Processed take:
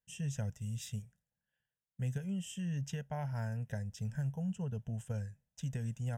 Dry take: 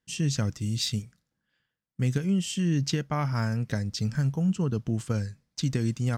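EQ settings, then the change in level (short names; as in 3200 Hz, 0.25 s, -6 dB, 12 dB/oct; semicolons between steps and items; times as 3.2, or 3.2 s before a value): bell 2200 Hz -13 dB 0.27 oct; fixed phaser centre 1200 Hz, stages 6; -7.5 dB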